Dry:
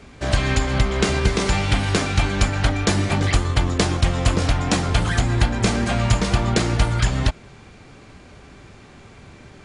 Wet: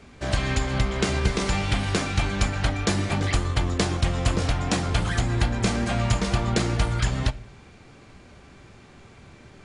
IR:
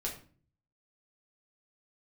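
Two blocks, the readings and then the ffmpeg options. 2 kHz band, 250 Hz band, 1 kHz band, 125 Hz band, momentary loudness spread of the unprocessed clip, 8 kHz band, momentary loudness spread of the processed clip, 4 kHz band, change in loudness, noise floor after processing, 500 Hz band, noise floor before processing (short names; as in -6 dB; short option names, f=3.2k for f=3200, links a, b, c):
-4.5 dB, -4.0 dB, -4.0 dB, -4.5 dB, 2 LU, -4.5 dB, 2 LU, -4.5 dB, -4.5 dB, -49 dBFS, -4.5 dB, -45 dBFS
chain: -filter_complex "[0:a]asplit=2[a][b];[1:a]atrim=start_sample=2205[c];[b][c]afir=irnorm=-1:irlink=0,volume=-14.5dB[d];[a][d]amix=inputs=2:normalize=0,volume=-5.5dB"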